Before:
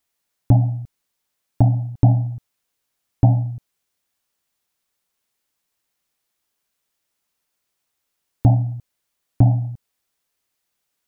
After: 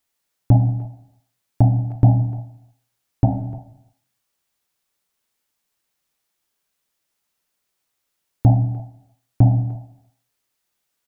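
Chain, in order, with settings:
0:02.27–0:03.54: mains-hum notches 60/120 Hz
far-end echo of a speakerphone 300 ms, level −18 dB
reverb whose tail is shaped and stops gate 370 ms falling, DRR 8.5 dB

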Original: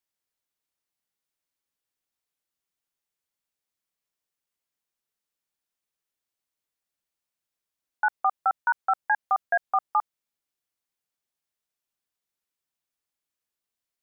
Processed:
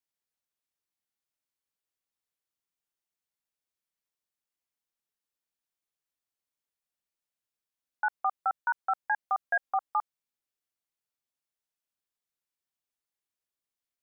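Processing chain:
0:09.45–0:09.89: comb filter 3.7 ms, depth 49%
level −5 dB

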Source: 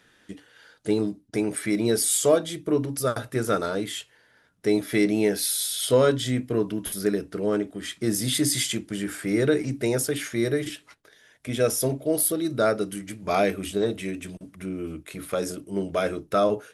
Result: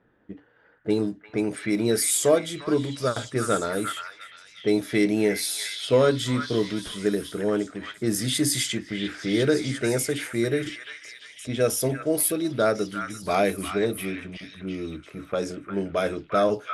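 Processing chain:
low-pass that shuts in the quiet parts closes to 930 Hz, open at −20 dBFS
echo through a band-pass that steps 350 ms, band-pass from 1,600 Hz, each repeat 0.7 octaves, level −3 dB

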